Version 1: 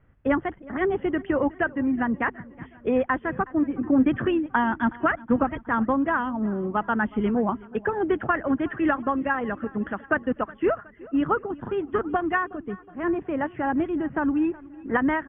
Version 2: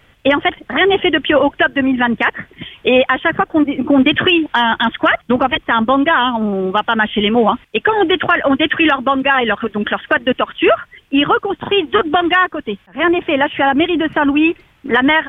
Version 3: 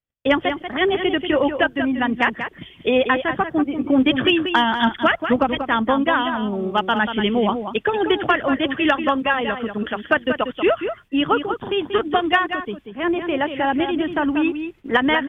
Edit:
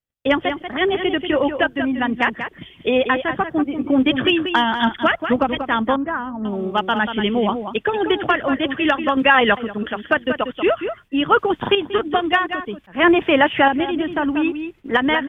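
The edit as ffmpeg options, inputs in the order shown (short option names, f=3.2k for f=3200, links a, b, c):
-filter_complex "[1:a]asplit=3[a][b][c];[2:a]asplit=5[d][e][f][g][h];[d]atrim=end=5.962[i];[0:a]atrim=start=5.958:end=6.452[j];[e]atrim=start=6.448:end=9.172[k];[a]atrim=start=9.168:end=9.572[l];[f]atrim=start=9.568:end=11.322[m];[b]atrim=start=11.318:end=11.752[n];[g]atrim=start=11.748:end=12.842[o];[c]atrim=start=12.838:end=13.682[p];[h]atrim=start=13.678[q];[i][j]acrossfade=d=0.004:c1=hsin:c2=hsin[r];[r][k]acrossfade=d=0.004:c1=hsin:c2=hsin[s];[s][l]acrossfade=d=0.004:c1=hsin:c2=hsin[t];[t][m]acrossfade=d=0.004:c1=hsin:c2=hsin[u];[u][n]acrossfade=d=0.004:c1=hsin:c2=hsin[v];[v][o]acrossfade=d=0.004:c1=hsin:c2=hsin[w];[w][p]acrossfade=d=0.004:c1=hsin:c2=hsin[x];[x][q]acrossfade=d=0.004:c1=hsin:c2=hsin"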